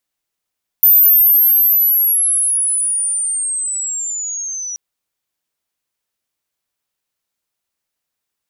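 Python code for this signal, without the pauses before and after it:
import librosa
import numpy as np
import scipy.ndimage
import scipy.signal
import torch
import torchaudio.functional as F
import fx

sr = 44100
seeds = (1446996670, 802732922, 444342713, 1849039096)

y = fx.chirp(sr, length_s=3.93, from_hz=14000.0, to_hz=5800.0, law='linear', from_db=-5.5, to_db=-22.5)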